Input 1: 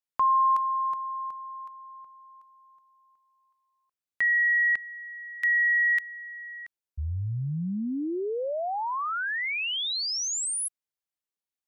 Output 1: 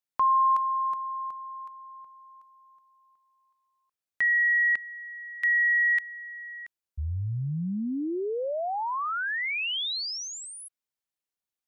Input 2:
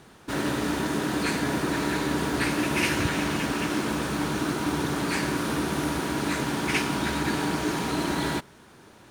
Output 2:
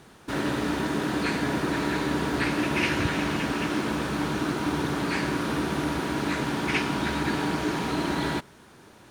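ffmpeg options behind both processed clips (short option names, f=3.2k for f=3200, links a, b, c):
-filter_complex "[0:a]acrossover=split=5000[a][b];[b]acompressor=threshold=-46dB:ratio=4:attack=1:release=60[c];[a][c]amix=inputs=2:normalize=0"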